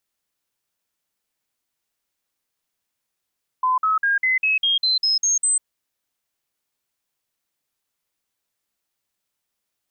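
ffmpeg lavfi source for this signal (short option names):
-f lavfi -i "aevalsrc='0.158*clip(min(mod(t,0.2),0.15-mod(t,0.2))/0.005,0,1)*sin(2*PI*1020*pow(2,floor(t/0.2)/3)*mod(t,0.2))':d=2:s=44100"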